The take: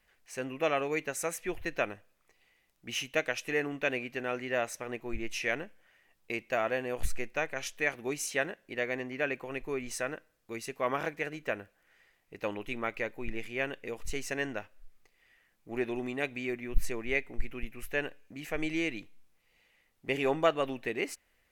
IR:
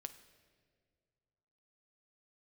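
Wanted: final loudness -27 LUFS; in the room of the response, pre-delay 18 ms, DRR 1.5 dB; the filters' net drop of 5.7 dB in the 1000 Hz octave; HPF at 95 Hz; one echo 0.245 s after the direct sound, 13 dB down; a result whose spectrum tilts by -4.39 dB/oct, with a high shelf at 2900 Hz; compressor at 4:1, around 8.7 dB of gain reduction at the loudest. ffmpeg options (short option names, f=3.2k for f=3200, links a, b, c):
-filter_complex "[0:a]highpass=95,equalizer=f=1k:t=o:g=-7.5,highshelf=f=2.9k:g=-7.5,acompressor=threshold=-34dB:ratio=4,aecho=1:1:245:0.224,asplit=2[a][b];[1:a]atrim=start_sample=2205,adelay=18[c];[b][c]afir=irnorm=-1:irlink=0,volume=3dB[d];[a][d]amix=inputs=2:normalize=0,volume=11dB"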